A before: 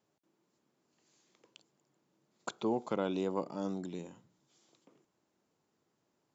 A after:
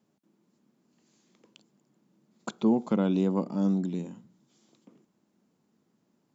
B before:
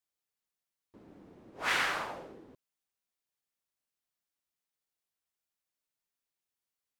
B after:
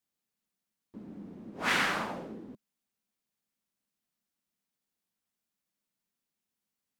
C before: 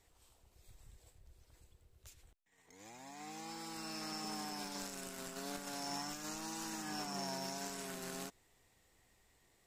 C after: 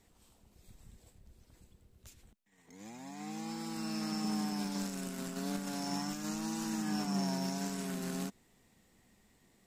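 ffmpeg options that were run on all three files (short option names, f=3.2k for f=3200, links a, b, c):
-af "equalizer=f=210:w=1.6:g=14,volume=1.5dB"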